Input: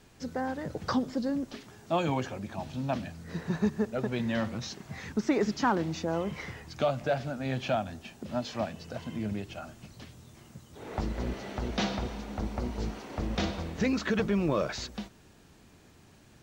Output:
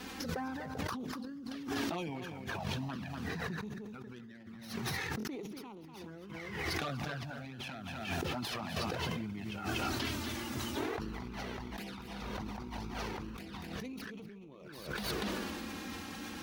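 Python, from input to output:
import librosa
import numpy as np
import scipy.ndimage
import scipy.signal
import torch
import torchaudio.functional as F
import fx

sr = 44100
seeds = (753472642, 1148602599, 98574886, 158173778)

y = fx.tracing_dist(x, sr, depth_ms=0.12)
y = fx.peak_eq(y, sr, hz=590.0, db=-8.5, octaves=0.41)
y = fx.rev_spring(y, sr, rt60_s=2.6, pass_ms=(57,), chirp_ms=50, drr_db=19.0)
y = fx.env_flanger(y, sr, rest_ms=4.1, full_db=-24.5)
y = fx.highpass(y, sr, hz=200.0, slope=6)
y = fx.peak_eq(y, sr, hz=7700.0, db=-7.5, octaves=0.59)
y = y + 10.0 ** (-9.5 / 20.0) * np.pad(y, (int(242 * sr / 1000.0), 0))[:len(y)]
y = fx.over_compress(y, sr, threshold_db=-53.0, ratio=-1.0)
y = fx.buffer_glitch(y, sr, at_s=(5.18,), block=1024, repeats=2)
y = fx.sustainer(y, sr, db_per_s=20.0)
y = y * 10.0 ** (7.0 / 20.0)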